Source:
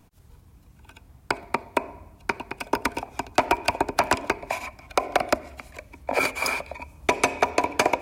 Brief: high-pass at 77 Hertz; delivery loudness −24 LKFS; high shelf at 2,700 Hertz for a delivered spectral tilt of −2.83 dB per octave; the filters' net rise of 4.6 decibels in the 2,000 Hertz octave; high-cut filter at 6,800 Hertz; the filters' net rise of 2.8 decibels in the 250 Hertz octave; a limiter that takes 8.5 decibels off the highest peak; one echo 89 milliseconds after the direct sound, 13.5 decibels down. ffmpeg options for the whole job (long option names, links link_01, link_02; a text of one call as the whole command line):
ffmpeg -i in.wav -af "highpass=77,lowpass=6800,equalizer=frequency=250:width_type=o:gain=3.5,equalizer=frequency=2000:width_type=o:gain=3.5,highshelf=frequency=2700:gain=5,alimiter=limit=-11dB:level=0:latency=1,aecho=1:1:89:0.211,volume=3.5dB" out.wav